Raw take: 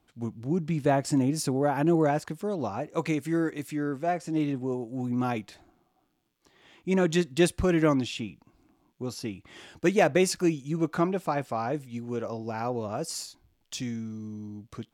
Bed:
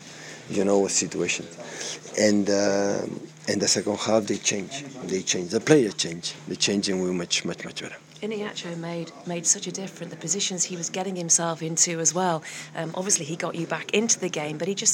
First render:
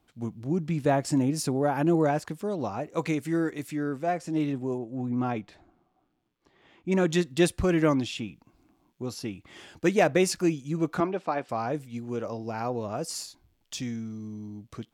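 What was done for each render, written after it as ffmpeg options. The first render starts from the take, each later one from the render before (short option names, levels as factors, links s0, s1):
-filter_complex "[0:a]asettb=1/sr,asplit=3[s0][s1][s2];[s0]atrim=end=4.784[s3];[s1]atrim=start=4.78:end=6.92,asetpts=PTS-STARTPTS,afade=t=in:d=0.004:c=qsin,afade=t=out:st=2.136:d=0.004:c=qsin,aemphasis=mode=reproduction:type=75kf[s4];[s2]atrim=start=6.916[s5];[s3][s4]acrossfade=d=0.004:c1=hsin:c2=qsin[s6];[s6][s5]acrossfade=d=0.004:c1=qsin:c2=hsin,asettb=1/sr,asplit=3[s7][s8][s9];[s7]atrim=end=11.004[s10];[s8]atrim=start=11:end=11.49,asetpts=PTS-STARTPTS,afade=t=in:d=0.004:c=qsin,afade=t=out:st=0.486:d=0.004:c=qsin,highpass=240,lowpass=4300[s11];[s9]atrim=start=11.486[s12];[s10][s11]acrossfade=d=0.004:c1=hsin:c2=qsin[s13];[s13][s12]acrossfade=d=0.004:c1=qsin:c2=hsin"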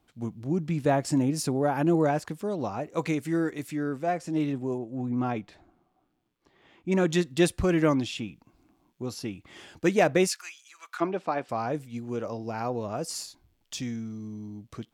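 -filter_complex "[0:a]asplit=3[s0][s1][s2];[s0]afade=t=out:st=10.26:d=0.02[s3];[s1]highpass=f=1200:w=0.5412,highpass=f=1200:w=1.3066,afade=t=in:st=10.26:d=0.02,afade=t=out:st=11:d=0.02[s4];[s2]afade=t=in:st=11:d=0.02[s5];[s3][s4][s5]amix=inputs=3:normalize=0"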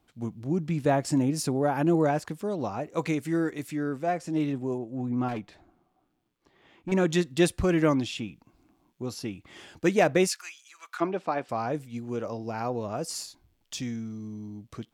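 -filter_complex "[0:a]asettb=1/sr,asplit=3[s0][s1][s2];[s0]atrim=end=5.284[s3];[s1]atrim=start=5.28:end=6.92,asetpts=PTS-STARTPTS,afade=t=in:d=0.004:c=qsin,afade=t=out:st=1.636:d=0.004:c=qsin,asoftclip=type=hard:threshold=0.0376[s4];[s2]atrim=start=6.916[s5];[s3][s4]acrossfade=d=0.004:c1=hsin:c2=qsin[s6];[s6][s5]acrossfade=d=0.004:c1=qsin:c2=hsin"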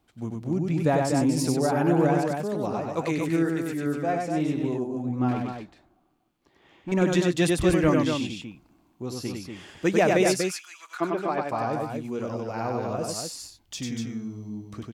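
-af "aecho=1:1:96.21|242:0.708|0.562"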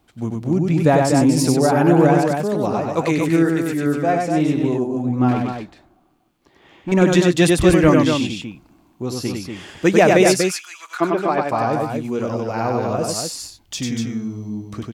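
-af "volume=2.51"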